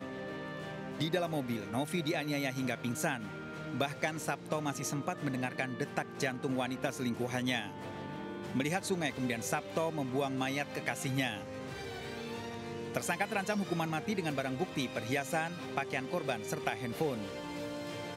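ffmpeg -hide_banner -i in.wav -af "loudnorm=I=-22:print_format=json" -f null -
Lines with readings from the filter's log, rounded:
"input_i" : "-35.9",
"input_tp" : "-14.8",
"input_lra" : "1.7",
"input_thresh" : "-45.9",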